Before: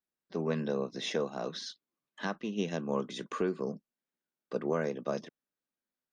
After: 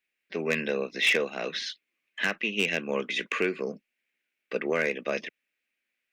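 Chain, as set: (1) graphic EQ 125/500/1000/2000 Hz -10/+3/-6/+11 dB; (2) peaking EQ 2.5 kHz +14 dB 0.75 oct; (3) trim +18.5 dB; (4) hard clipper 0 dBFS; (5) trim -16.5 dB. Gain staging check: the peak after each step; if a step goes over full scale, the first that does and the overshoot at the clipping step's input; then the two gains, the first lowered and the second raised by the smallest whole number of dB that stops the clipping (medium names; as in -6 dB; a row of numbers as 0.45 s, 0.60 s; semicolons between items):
-16.0 dBFS, -10.0 dBFS, +8.5 dBFS, 0.0 dBFS, -16.5 dBFS; step 3, 8.5 dB; step 3 +9.5 dB, step 5 -7.5 dB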